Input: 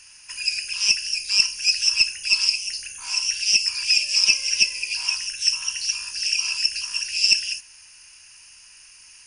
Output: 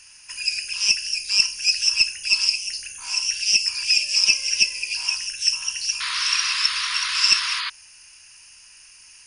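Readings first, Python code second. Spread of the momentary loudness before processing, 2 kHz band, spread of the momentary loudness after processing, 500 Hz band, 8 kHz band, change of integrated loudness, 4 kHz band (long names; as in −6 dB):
8 LU, +1.0 dB, 8 LU, can't be measured, 0.0 dB, +0.5 dB, +0.5 dB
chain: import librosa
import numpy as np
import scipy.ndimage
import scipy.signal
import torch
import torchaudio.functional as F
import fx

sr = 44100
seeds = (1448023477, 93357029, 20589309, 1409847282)

y = fx.spec_paint(x, sr, seeds[0], shape='noise', start_s=6.0, length_s=1.7, low_hz=960.0, high_hz=5000.0, level_db=-27.0)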